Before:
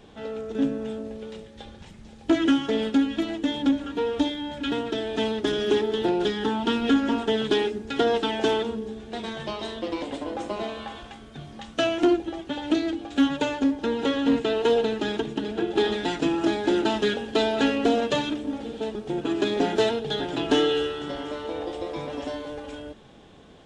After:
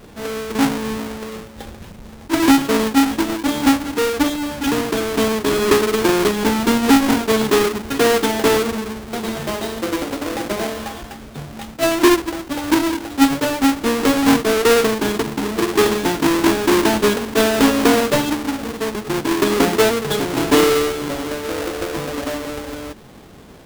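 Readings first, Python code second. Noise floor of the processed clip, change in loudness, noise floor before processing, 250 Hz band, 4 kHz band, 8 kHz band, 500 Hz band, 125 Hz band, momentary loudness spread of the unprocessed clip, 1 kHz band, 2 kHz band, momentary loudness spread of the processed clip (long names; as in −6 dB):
−39 dBFS, +8.0 dB, −47 dBFS, +7.5 dB, +6.5 dB, +19.5 dB, +7.0 dB, +9.5 dB, 12 LU, +9.5 dB, +10.5 dB, 13 LU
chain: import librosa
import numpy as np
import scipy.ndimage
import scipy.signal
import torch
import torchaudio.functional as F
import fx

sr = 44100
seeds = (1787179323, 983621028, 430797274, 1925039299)

y = fx.halfwave_hold(x, sr)
y = fx.attack_slew(y, sr, db_per_s=370.0)
y = F.gain(torch.from_numpy(y), 3.5).numpy()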